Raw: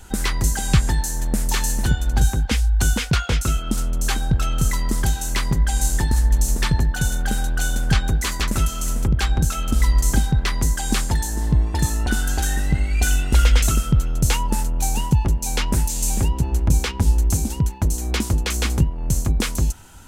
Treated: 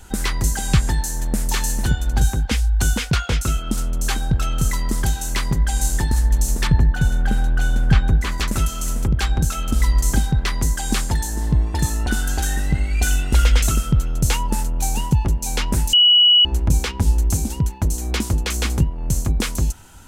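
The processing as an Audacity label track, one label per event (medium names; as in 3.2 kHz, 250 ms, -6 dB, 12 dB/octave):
6.670000	8.380000	tone controls bass +4 dB, treble -11 dB
15.930000	16.450000	bleep 2.93 kHz -9 dBFS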